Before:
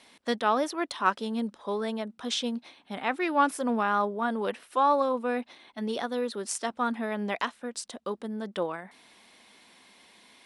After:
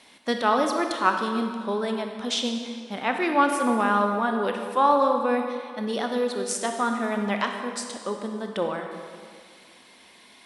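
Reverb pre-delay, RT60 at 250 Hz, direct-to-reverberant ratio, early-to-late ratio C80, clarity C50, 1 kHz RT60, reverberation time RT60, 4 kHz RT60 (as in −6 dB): 24 ms, 2.0 s, 4.0 dB, 6.0 dB, 5.0 dB, 2.0 s, 1.9 s, 1.6 s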